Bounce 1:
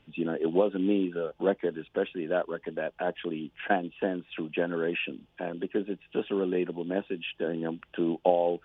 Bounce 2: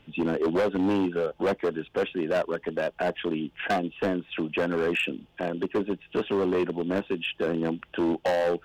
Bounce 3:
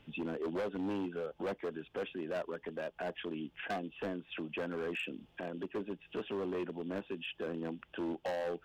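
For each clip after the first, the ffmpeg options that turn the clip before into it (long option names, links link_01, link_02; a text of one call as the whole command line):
ffmpeg -i in.wav -af "volume=26dB,asoftclip=hard,volume=-26dB,volume=5.5dB" out.wav
ffmpeg -i in.wav -af "alimiter=level_in=4dB:limit=-24dB:level=0:latency=1:release=203,volume=-4dB,volume=-4.5dB" out.wav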